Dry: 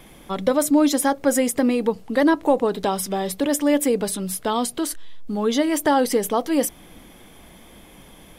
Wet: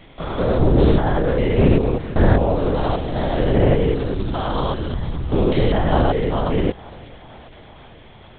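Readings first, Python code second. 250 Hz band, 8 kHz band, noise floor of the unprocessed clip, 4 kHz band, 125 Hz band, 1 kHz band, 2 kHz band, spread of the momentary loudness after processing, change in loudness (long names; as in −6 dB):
−0.5 dB, below −40 dB, −47 dBFS, −1.0 dB, +19.5 dB, 0.0 dB, −0.5 dB, 8 LU, +2.0 dB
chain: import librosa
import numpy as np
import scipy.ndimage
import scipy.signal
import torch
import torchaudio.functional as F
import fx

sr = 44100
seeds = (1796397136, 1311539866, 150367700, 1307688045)

p1 = fx.spec_steps(x, sr, hold_ms=200)
p2 = fx.quant_dither(p1, sr, seeds[0], bits=6, dither='none')
p3 = p1 + (p2 * librosa.db_to_amplitude(-5.5))
p4 = fx.echo_thinned(p3, sr, ms=456, feedback_pct=78, hz=380.0, wet_db=-20.5)
p5 = fx.lpc_vocoder(p4, sr, seeds[1], excitation='whisper', order=8)
y = p5 * librosa.db_to_amplitude(3.5)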